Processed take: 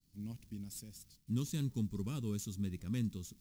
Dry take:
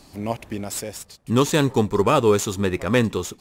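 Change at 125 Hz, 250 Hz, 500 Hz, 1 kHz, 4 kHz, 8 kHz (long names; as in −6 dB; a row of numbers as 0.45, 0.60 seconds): −12.5, −15.5, −31.0, −35.5, −21.5, −18.0 decibels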